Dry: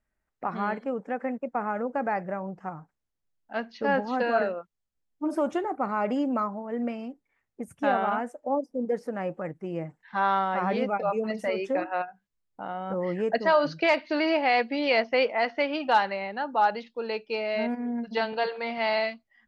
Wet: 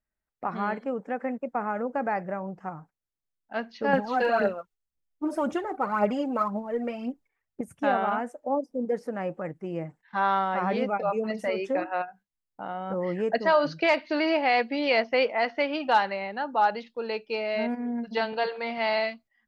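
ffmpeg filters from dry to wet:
-filter_complex "[0:a]asettb=1/sr,asplit=3[s0][s1][s2];[s0]atrim=end=3.934[s3];[s1]atrim=start=3.93:end=7.61,asetpts=PTS-STARTPTS,afade=t=in:d=0.004:c=qsin,afade=t=out:st=3.676:d=0.004:c=qsin,aphaser=in_gain=1:out_gain=1:delay=2.8:decay=0.56:speed=1.9:type=triangular[s4];[s2]atrim=start=7.606[s5];[s3][s4]acrossfade=d=0.004:c1=hsin:c2=qsin[s6];[s6][s5]acrossfade=d=0.004:c1=qsin:c2=hsin,agate=range=0.398:threshold=0.00282:ratio=16:detection=peak"

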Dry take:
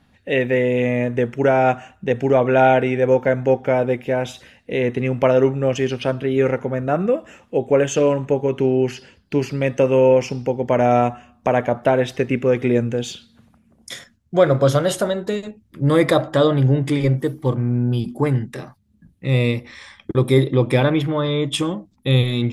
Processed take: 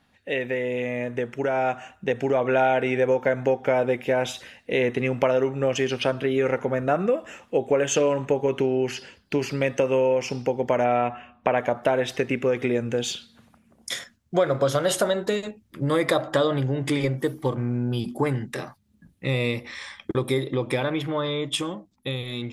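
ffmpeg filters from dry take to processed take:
-filter_complex "[0:a]asettb=1/sr,asplit=3[s0][s1][s2];[s0]atrim=end=10.844[s3];[s1]atrim=start=10.84:end=11.58,asetpts=PTS-STARTPTS,afade=t=in:d=0.004:c=qsin,afade=t=out:st=0.736:d=0.004:c=qsin,highshelf=f=4100:t=q:w=1.5:g=-13[s4];[s2]atrim=start=11.576[s5];[s3][s4]acrossfade=d=0.004:c1=hsin:c2=qsin[s6];[s6][s5]acrossfade=d=0.004:c1=qsin:c2=hsin,acompressor=threshold=0.126:ratio=6,lowshelf=f=300:g=-9,dynaudnorm=f=230:g=17:m=2,volume=0.75"

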